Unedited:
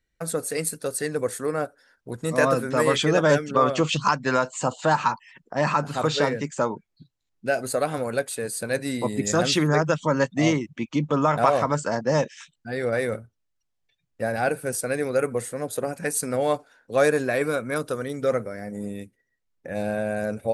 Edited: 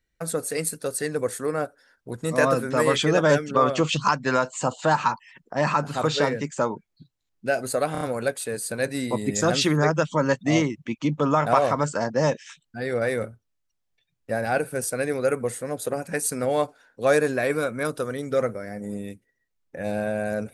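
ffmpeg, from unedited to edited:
-filter_complex "[0:a]asplit=4[a][b][c][d];[a]atrim=end=7.952[e];[b]atrim=start=7.918:end=7.952[f];[c]atrim=start=7.918:end=7.952[g];[d]atrim=start=7.918[h];[e][f]acrossfade=d=0.004:c1=hsin:c2=hsin[i];[i][g]acrossfade=d=0.004:c1=hsin:c2=hsin[j];[j][h]acrossfade=d=0.004:c1=hsin:c2=hsin"

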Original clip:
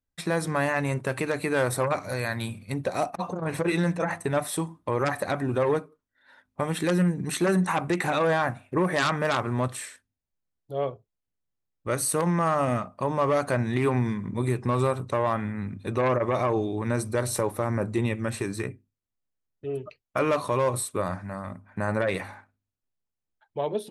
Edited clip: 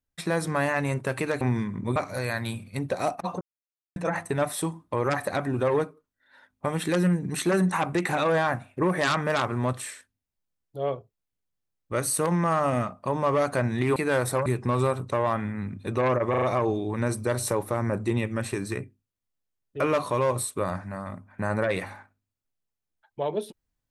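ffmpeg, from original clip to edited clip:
-filter_complex "[0:a]asplit=11[a][b][c][d][e][f][g][h][i][j][k];[a]atrim=end=1.412[l];[b]atrim=start=13.908:end=14.462[m];[c]atrim=start=1.908:end=3.36,asetpts=PTS-STARTPTS,afade=t=out:st=1.448:d=0.004:c=hsin[n];[d]atrim=start=3.36:end=3.91,asetpts=PTS-STARTPTS,volume=0[o];[e]atrim=start=3.91:end=13.912,asetpts=PTS-STARTPTS,afade=t=in:d=0.004:c=hsin[p];[f]atrim=start=1.408:end=1.912[q];[g]atrim=start=14.458:end=16.342[r];[h]atrim=start=16.298:end=16.342[s];[i]atrim=start=16.298:end=16.342[t];[j]atrim=start=16.298:end=19.682[u];[k]atrim=start=20.178[v];[l][m]acrossfade=d=0.004:c1=hsin:c2=hsin[w];[n][o][p]concat=n=3:v=0:a=1[x];[w][x]acrossfade=d=0.004:c1=hsin:c2=hsin[y];[y][q]acrossfade=d=0.004:c1=hsin:c2=hsin[z];[z][r]acrossfade=d=0.004:c1=hsin:c2=hsin[aa];[aa][s]acrossfade=d=0.004:c1=hsin:c2=hsin[ab];[ab][t]acrossfade=d=0.004:c1=hsin:c2=hsin[ac];[ac][u]acrossfade=d=0.004:c1=hsin:c2=hsin[ad];[ad][v]acrossfade=d=0.004:c1=hsin:c2=hsin"

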